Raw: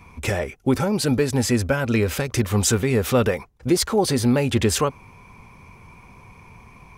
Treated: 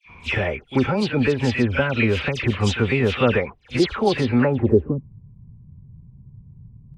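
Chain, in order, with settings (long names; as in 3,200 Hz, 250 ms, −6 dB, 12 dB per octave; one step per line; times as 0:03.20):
all-pass dispersion lows, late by 90 ms, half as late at 2,500 Hz
low-pass filter sweep 2,900 Hz → 140 Hz, 0:04.27–0:05.08
echo ahead of the sound 37 ms −17.5 dB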